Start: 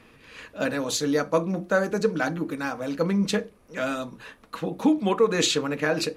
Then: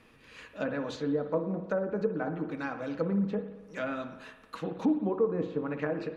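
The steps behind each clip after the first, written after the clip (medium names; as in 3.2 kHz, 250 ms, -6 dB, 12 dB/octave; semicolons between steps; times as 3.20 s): low-pass that closes with the level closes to 680 Hz, closed at -19.5 dBFS; spring tank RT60 1.2 s, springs 56 ms, chirp 70 ms, DRR 9 dB; trim -6 dB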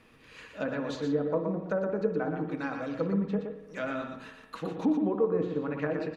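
delay 119 ms -6 dB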